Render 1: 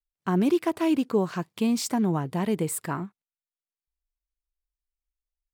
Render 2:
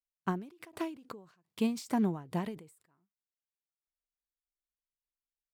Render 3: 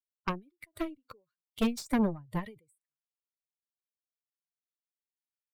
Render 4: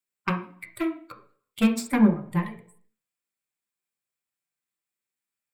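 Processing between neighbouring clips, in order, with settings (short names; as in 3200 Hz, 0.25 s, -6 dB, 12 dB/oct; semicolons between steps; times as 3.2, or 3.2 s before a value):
gate -43 dBFS, range -12 dB; ending taper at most 120 dB/s; gain -4 dB
per-bin expansion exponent 2; added harmonics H 5 -21 dB, 6 -12 dB, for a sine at -19.5 dBFS; gain +2 dB
reverb RT60 0.50 s, pre-delay 3 ms, DRR 3.5 dB; gain +5.5 dB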